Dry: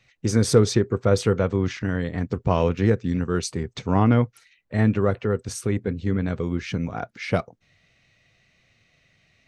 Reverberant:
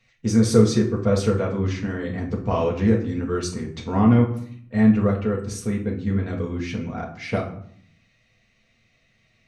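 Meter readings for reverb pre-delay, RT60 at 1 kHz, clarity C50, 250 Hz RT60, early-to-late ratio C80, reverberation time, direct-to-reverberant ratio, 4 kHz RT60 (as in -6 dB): 4 ms, 0.60 s, 8.5 dB, 0.90 s, 12.5 dB, 0.65 s, -1.5 dB, 0.40 s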